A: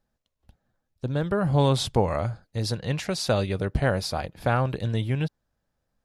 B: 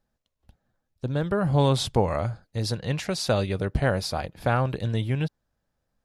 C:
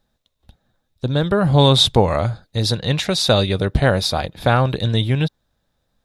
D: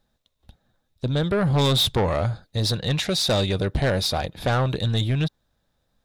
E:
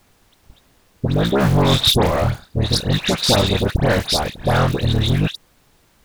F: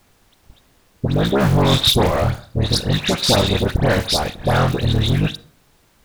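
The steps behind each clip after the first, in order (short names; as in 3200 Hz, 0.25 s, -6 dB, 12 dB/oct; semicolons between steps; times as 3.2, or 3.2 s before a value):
nothing audible
bell 3700 Hz +12.5 dB 0.23 oct; gain +7.5 dB
soft clip -14.5 dBFS, distortion -10 dB; gain -1.5 dB
cycle switcher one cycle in 3, muted; dispersion highs, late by 89 ms, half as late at 1800 Hz; added noise pink -64 dBFS; gain +7 dB
reverb RT60 0.55 s, pre-delay 38 ms, DRR 17 dB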